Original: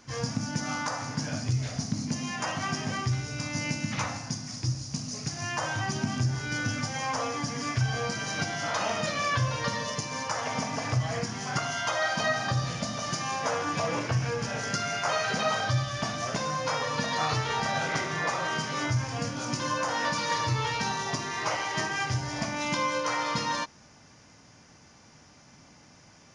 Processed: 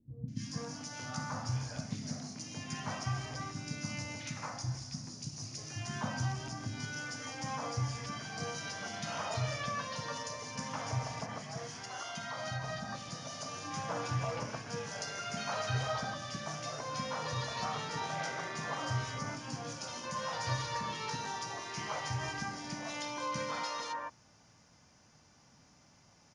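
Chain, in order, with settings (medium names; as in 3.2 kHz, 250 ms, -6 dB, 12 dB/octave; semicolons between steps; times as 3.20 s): 10.98–13.34 s: compression, threshold -28 dBFS, peak gain reduction 6.5 dB; three bands offset in time lows, highs, mids 280/440 ms, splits 330/2000 Hz; trim -7.5 dB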